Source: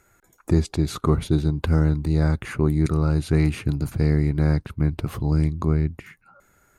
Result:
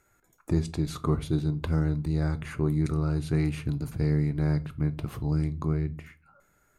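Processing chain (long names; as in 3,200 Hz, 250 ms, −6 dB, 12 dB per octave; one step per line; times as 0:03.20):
rectangular room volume 210 cubic metres, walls furnished, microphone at 0.42 metres
level −7 dB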